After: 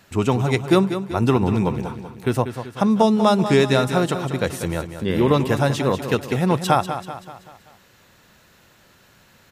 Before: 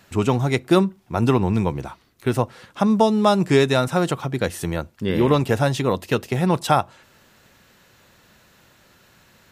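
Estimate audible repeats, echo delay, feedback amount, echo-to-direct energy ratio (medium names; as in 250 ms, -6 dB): 5, 192 ms, 49%, -9.0 dB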